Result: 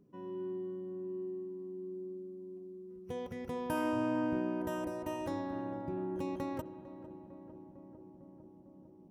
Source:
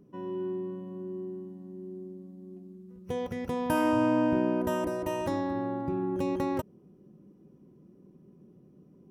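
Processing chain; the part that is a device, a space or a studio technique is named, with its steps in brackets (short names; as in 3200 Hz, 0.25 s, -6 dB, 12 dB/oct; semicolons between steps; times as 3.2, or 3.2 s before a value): dub delay into a spring reverb (darkening echo 0.452 s, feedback 81%, low-pass 1400 Hz, level -14 dB; spring tank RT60 3.2 s, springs 46 ms, chirp 40 ms, DRR 15.5 dB); gain -7.5 dB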